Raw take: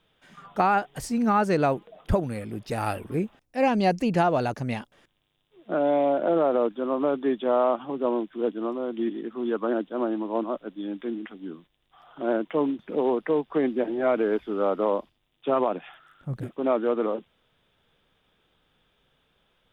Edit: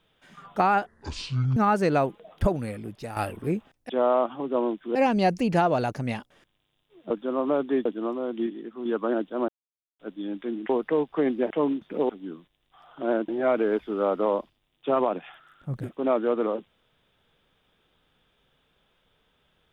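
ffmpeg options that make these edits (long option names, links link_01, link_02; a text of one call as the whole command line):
ffmpeg -i in.wav -filter_complex "[0:a]asplit=16[link_01][link_02][link_03][link_04][link_05][link_06][link_07][link_08][link_09][link_10][link_11][link_12][link_13][link_14][link_15][link_16];[link_01]atrim=end=0.864[link_17];[link_02]atrim=start=0.86:end=1.24,asetpts=PTS-STARTPTS,asetrate=23814,aresample=44100,atrim=end_sample=31033,asetpts=PTS-STARTPTS[link_18];[link_03]atrim=start=1.236:end=2.84,asetpts=PTS-STARTPTS,afade=type=out:start_time=1.124:duration=0.48:silence=0.316228[link_19];[link_04]atrim=start=2.84:end=3.572,asetpts=PTS-STARTPTS,afade=type=in:duration=0.004:curve=hsin:silence=0.316228[link_20];[link_05]atrim=start=7.388:end=8.452[link_21];[link_06]atrim=start=3.568:end=5.722[link_22];[link_07]atrim=start=6.638:end=7.392[link_23];[link_08]atrim=start=8.448:end=9.062[link_24];[link_09]atrim=start=9.058:end=9.452,asetpts=PTS-STARTPTS,volume=-4.5dB[link_25];[link_10]atrim=start=9.448:end=10.08,asetpts=PTS-STARTPTS,afade=type=out:start_time=0.628:duration=0.004:curve=hsin[link_26];[link_11]atrim=start=10.08:end=10.59,asetpts=PTS-STARTPTS,volume=0[link_27];[link_12]atrim=start=10.59:end=11.292,asetpts=PTS-STARTPTS,afade=type=in:duration=0.004:curve=hsin[link_28];[link_13]atrim=start=13.068:end=13.882[link_29];[link_14]atrim=start=12.478:end=13.072[link_30];[link_15]atrim=start=11.288:end=12.482[link_31];[link_16]atrim=start=13.878[link_32];[link_17][link_18]acrossfade=duration=0.004:curve1=hsin:curve2=hsin[link_33];[link_19][link_20]concat=n=2:v=0:a=1[link_34];[link_33][link_34]acrossfade=duration=0.004:curve1=hsin:curve2=hsin[link_35];[link_35][link_21]acrossfade=duration=0.004:curve1=hsin:curve2=hsin[link_36];[link_36][link_22]acrossfade=duration=0.004:curve1=hsin:curve2=hsin[link_37];[link_37][link_23]acrossfade=duration=0.004:curve1=hsin:curve2=hsin[link_38];[link_38][link_24]acrossfade=duration=0.004:curve1=hsin:curve2=hsin[link_39];[link_39][link_25]acrossfade=duration=0.004:curve1=hsin:curve2=hsin[link_40];[link_26][link_27][link_28]concat=n=3:v=0:a=1[link_41];[link_40][link_41]acrossfade=duration=0.004:curve1=hsin:curve2=hsin[link_42];[link_42][link_29]acrossfade=duration=0.004:curve1=hsin:curve2=hsin[link_43];[link_43][link_30]acrossfade=duration=0.004:curve1=hsin:curve2=hsin[link_44];[link_44][link_31]acrossfade=duration=0.004:curve1=hsin:curve2=hsin[link_45];[link_45][link_32]acrossfade=duration=0.004:curve1=hsin:curve2=hsin" out.wav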